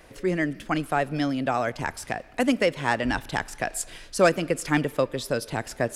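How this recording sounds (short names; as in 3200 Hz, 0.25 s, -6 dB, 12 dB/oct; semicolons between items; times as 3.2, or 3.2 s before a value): noise floor -48 dBFS; spectral tilt -5.0 dB/oct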